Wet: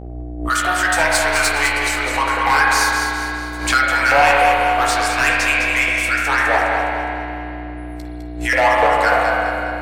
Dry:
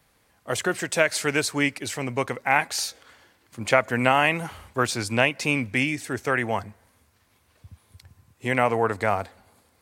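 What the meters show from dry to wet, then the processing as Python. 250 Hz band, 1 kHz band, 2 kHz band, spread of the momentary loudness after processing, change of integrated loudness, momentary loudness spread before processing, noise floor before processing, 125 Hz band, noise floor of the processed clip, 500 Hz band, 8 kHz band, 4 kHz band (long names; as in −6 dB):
+1.5 dB, +11.5 dB, +11.0 dB, 14 LU, +8.5 dB, 10 LU, −65 dBFS, +2.0 dB, −30 dBFS, +5.5 dB, +8.0 dB, +8.5 dB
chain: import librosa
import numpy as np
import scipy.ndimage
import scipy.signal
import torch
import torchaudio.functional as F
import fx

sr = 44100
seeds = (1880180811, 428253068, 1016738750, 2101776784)

p1 = fx.filter_lfo_highpass(x, sr, shape='saw_up', hz=3.4, low_hz=500.0, high_hz=1800.0, q=7.5)
p2 = fx.high_shelf(p1, sr, hz=2500.0, db=10.0)
p3 = fx.level_steps(p2, sr, step_db=17)
p4 = p2 + (p3 * 10.0 ** (-1.0 / 20.0))
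p5 = fx.noise_reduce_blind(p4, sr, reduce_db=26)
p6 = 10.0 ** (-8.0 / 20.0) * np.tanh(p5 / 10.0 ** (-8.0 / 20.0))
p7 = fx.dmg_buzz(p6, sr, base_hz=60.0, harmonics=13, level_db=-30.0, tilt_db=-5, odd_only=False)
p8 = fx.doubler(p7, sr, ms=14.0, db=-7.5)
p9 = fx.echo_feedback(p8, sr, ms=206, feedback_pct=44, wet_db=-7.0)
p10 = fx.rev_spring(p9, sr, rt60_s=2.9, pass_ms=(30, 49), chirp_ms=30, drr_db=-3.0)
p11 = fx.pre_swell(p10, sr, db_per_s=87.0)
y = p11 * 10.0 ** (-4.5 / 20.0)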